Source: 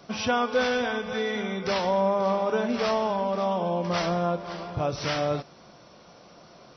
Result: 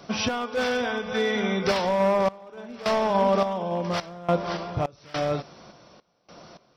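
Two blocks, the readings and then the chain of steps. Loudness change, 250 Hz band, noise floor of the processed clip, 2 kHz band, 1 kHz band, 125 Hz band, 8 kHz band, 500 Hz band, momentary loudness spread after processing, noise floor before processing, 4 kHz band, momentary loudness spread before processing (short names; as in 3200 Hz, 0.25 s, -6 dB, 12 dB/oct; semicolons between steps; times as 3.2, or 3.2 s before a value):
+1.0 dB, +1.0 dB, -63 dBFS, +0.5 dB, +0.5 dB, +1.0 dB, n/a, +1.0 dB, 9 LU, -52 dBFS, +1.0 dB, 6 LU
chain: hard clip -20.5 dBFS, distortion -17 dB; random-step tremolo, depth 95%; gain +6.5 dB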